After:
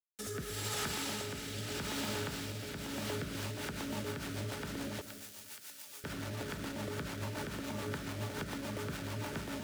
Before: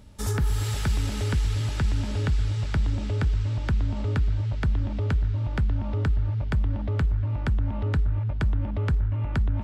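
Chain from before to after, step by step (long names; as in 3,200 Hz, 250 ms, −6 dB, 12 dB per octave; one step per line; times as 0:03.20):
high-pass filter 170 Hz 12 dB per octave
feedback delay with all-pass diffusion 489 ms, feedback 59%, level −5 dB
bit reduction 7 bits
brickwall limiter −25.5 dBFS, peak gain reduction 9 dB
0:05.01–0:06.04: first difference
on a send at −12 dB: convolution reverb RT60 1.6 s, pre-delay 90 ms
on the sum: rotating-speaker cabinet horn 0.85 Hz, later 7 Hz, at 0:02.91
low-shelf EQ 260 Hz −9.5 dB
level +1 dB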